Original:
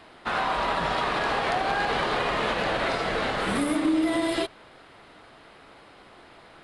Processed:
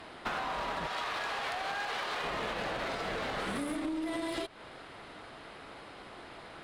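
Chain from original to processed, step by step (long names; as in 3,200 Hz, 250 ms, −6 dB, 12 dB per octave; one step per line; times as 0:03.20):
0:00.87–0:02.24: high-pass filter 1,000 Hz 6 dB per octave
downward compressor 10 to 1, threshold −33 dBFS, peak gain reduction 13.5 dB
asymmetric clip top −36 dBFS
level +2 dB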